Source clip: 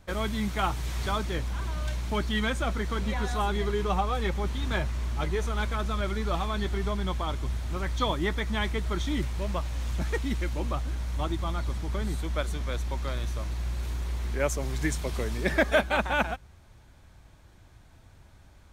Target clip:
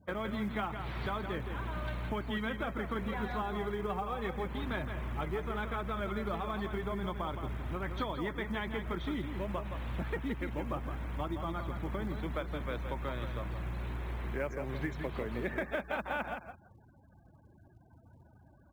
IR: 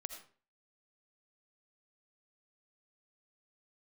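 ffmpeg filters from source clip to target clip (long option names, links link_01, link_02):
-filter_complex "[0:a]highpass=110,lowpass=2600,acompressor=threshold=-33dB:ratio=6,asplit=2[link_01][link_02];[link_02]aecho=0:1:167|334|501:0.422|0.0759|0.0137[link_03];[link_01][link_03]amix=inputs=2:normalize=0,afftfilt=real='re*gte(hypot(re,im),0.00224)':imag='im*gte(hypot(re,im),0.00224)':win_size=1024:overlap=0.75,acrusher=bits=8:mode=log:mix=0:aa=0.000001"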